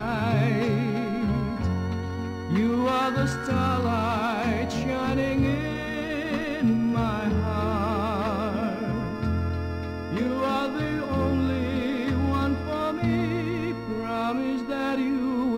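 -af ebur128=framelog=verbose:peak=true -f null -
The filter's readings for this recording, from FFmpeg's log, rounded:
Integrated loudness:
  I:         -26.3 LUFS
  Threshold: -36.3 LUFS
Loudness range:
  LRA:         2.1 LU
  Threshold: -46.3 LUFS
  LRA low:   -27.5 LUFS
  LRA high:  -25.4 LUFS
True peak:
  Peak:      -12.6 dBFS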